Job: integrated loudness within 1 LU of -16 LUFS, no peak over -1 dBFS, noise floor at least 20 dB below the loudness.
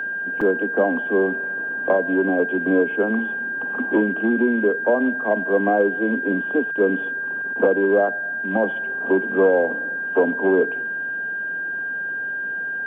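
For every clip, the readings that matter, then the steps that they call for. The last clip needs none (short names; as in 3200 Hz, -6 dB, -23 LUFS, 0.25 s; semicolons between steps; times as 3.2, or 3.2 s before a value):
dropouts 1; longest dropout 5.1 ms; steady tone 1600 Hz; tone level -24 dBFS; loudness -21.0 LUFS; peak -6.0 dBFS; loudness target -16.0 LUFS
-> interpolate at 0.41, 5.1 ms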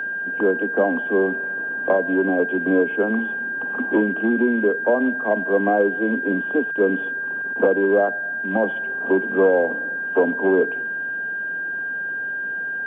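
dropouts 0; steady tone 1600 Hz; tone level -24 dBFS
-> notch 1600 Hz, Q 30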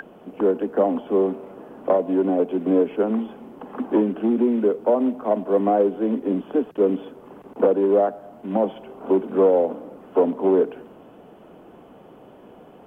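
steady tone none; loudness -21.5 LUFS; peak -7.0 dBFS; loudness target -16.0 LUFS
-> gain +5.5 dB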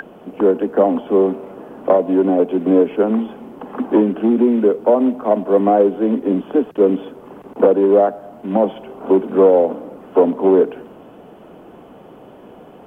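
loudness -16.0 LUFS; peak -1.5 dBFS; noise floor -42 dBFS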